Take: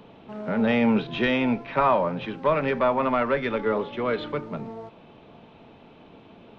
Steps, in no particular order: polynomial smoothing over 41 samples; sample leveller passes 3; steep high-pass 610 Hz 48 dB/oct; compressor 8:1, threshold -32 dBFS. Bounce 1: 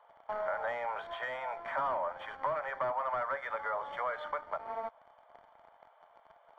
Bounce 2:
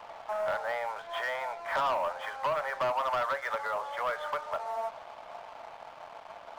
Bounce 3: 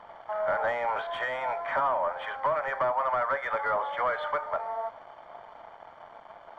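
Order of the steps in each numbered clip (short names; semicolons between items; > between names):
steep high-pass > sample leveller > compressor > polynomial smoothing; polynomial smoothing > compressor > steep high-pass > sample leveller; steep high-pass > compressor > sample leveller > polynomial smoothing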